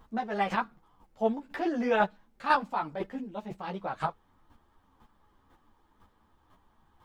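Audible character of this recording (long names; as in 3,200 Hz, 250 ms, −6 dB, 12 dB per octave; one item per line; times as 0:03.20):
chopped level 2 Hz, depth 60%, duty 10%
a shimmering, thickened sound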